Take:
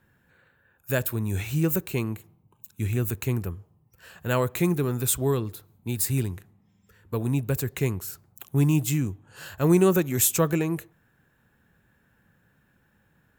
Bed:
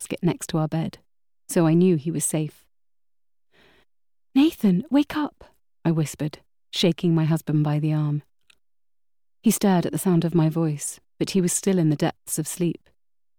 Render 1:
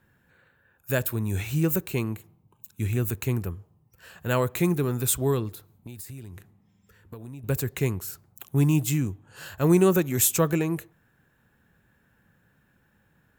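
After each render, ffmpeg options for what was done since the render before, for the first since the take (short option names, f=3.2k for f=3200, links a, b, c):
-filter_complex "[0:a]asettb=1/sr,asplit=3[a][b][c];[a]atrim=end=5.494[d];[b]atrim=start=5.49:end=7.44,asetpts=PTS-STARTPTS,afade=t=in:d=0.004:c=qsin,afade=t=out:st=1.946:d=0.004:c=qsin,acompressor=threshold=-36dB:ratio=16:attack=3.2:release=140:knee=1:detection=peak[e];[c]atrim=start=7.436[f];[d][e]acrossfade=d=0.004:c1=hsin:c2=qsin[g];[g][f]acrossfade=d=0.004:c1=qsin:c2=hsin"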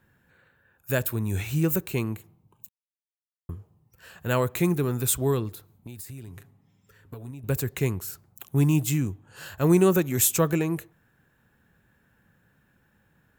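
-filter_complex "[0:a]asettb=1/sr,asplit=3[a][b][c];[a]atrim=end=6.274[d];[b]atrim=start=6.27:end=7.31,asetpts=PTS-STARTPTS,afade=t=in:d=0.004:c=qsin,afade=t=out:st=1.036:d=0.004:c=qsin,aecho=1:1:7.3:0.53,atrim=end_sample=45864[e];[c]atrim=start=7.306[f];[d][e]acrossfade=d=0.004:c1=hsin:c2=qsin[g];[g][f]acrossfade=d=0.004:c1=qsin:c2=hsin,asplit=3[h][i][j];[h]atrim=end=2.69,asetpts=PTS-STARTPTS,afade=t=out:st=2.686:d=0.004:c=hsin[k];[i]atrim=start=2.69:end=3.49,asetpts=PTS-STARTPTS,volume=0[l];[j]atrim=start=3.49,asetpts=PTS-STARTPTS,afade=t=in:d=0.004:c=hsin[m];[k][l][m]concat=n=3:v=0:a=1"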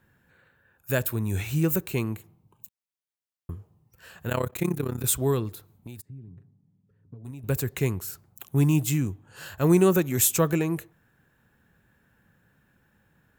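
-filter_complex "[0:a]asettb=1/sr,asplit=3[a][b][c];[a]atrim=end=4.294[d];[b]atrim=start=4.29:end=5.04,asetpts=PTS-STARTPTS,afade=t=in:d=0.004:c=qsin,afade=t=out:st=0.746:d=0.004:c=qsin,tremolo=f=33:d=0.889[e];[c]atrim=start=5.036[f];[d][e]acrossfade=d=0.004:c1=hsin:c2=qsin[g];[g][f]acrossfade=d=0.004:c1=qsin:c2=hsin,asplit=3[h][i][j];[h]afade=t=out:st=6:d=0.02[k];[i]bandpass=f=160:t=q:w=1.3,afade=t=in:st=6:d=0.02,afade=t=out:st=7.24:d=0.02[l];[j]afade=t=in:st=7.24:d=0.02[m];[k][l][m]amix=inputs=3:normalize=0"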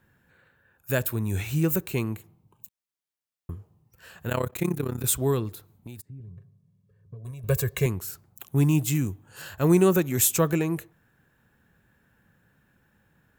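-filter_complex "[0:a]asettb=1/sr,asplit=3[a][b][c];[a]atrim=end=6.204[d];[b]atrim=start=6.2:end=7.86,asetpts=PTS-STARTPTS,afade=t=in:d=0.004:c=qsin,afade=t=out:st=1.656:d=0.004:c=qsin,aecho=1:1:1.8:0.82,atrim=end_sample=73206[e];[c]atrim=start=7.856[f];[d][e]acrossfade=d=0.004:c1=hsin:c2=qsin[g];[g][f]acrossfade=d=0.004:c1=qsin:c2=hsin,asettb=1/sr,asplit=3[h][i][j];[h]atrim=end=8.954[k];[i]atrim=start=8.95:end=9.42,asetpts=PTS-STARTPTS,afade=t=in:d=0.004:c=qsin,afade=t=out:st=0.466:d=0.004:c=qsin,highshelf=f=9k:g=10[l];[j]atrim=start=9.416[m];[k][l]acrossfade=d=0.004:c1=hsin:c2=qsin[n];[n][m]acrossfade=d=0.004:c1=qsin:c2=hsin"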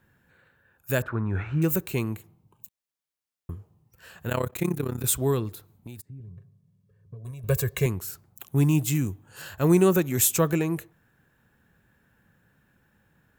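-filter_complex "[0:a]asettb=1/sr,asplit=3[a][b][c];[a]atrim=end=1.024[d];[b]atrim=start=1.02:end=1.62,asetpts=PTS-STARTPTS,afade=t=in:d=0.004:c=qsin,afade=t=out:st=0.596:d=0.004:c=qsin,lowpass=f=1.4k:t=q:w=3.8[e];[c]atrim=start=1.616[f];[d][e]acrossfade=d=0.004:c1=hsin:c2=qsin[g];[g][f]acrossfade=d=0.004:c1=qsin:c2=hsin"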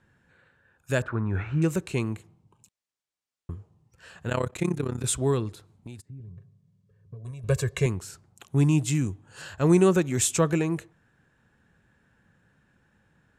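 -af "lowpass=f=9k:w=0.5412,lowpass=f=9k:w=1.3066"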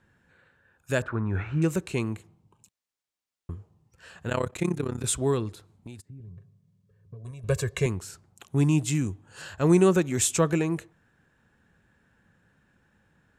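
-af "equalizer=f=130:t=o:w=0.35:g=-3"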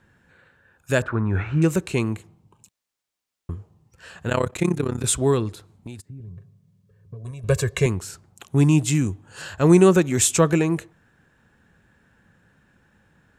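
-af "volume=5.5dB"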